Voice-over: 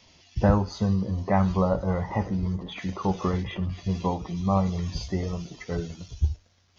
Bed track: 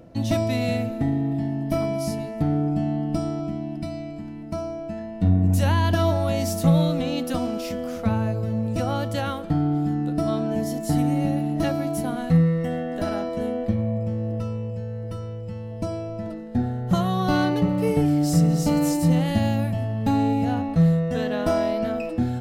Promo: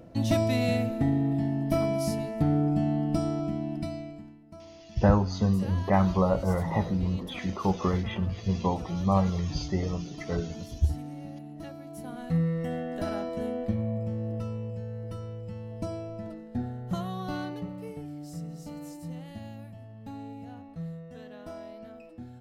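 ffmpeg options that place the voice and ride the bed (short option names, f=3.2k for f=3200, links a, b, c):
-filter_complex "[0:a]adelay=4600,volume=-0.5dB[a];[1:a]volume=10.5dB,afade=t=out:st=3.79:d=0.61:silence=0.158489,afade=t=in:st=11.86:d=0.84:silence=0.237137,afade=t=out:st=15.78:d=2.23:silence=0.188365[b];[a][b]amix=inputs=2:normalize=0"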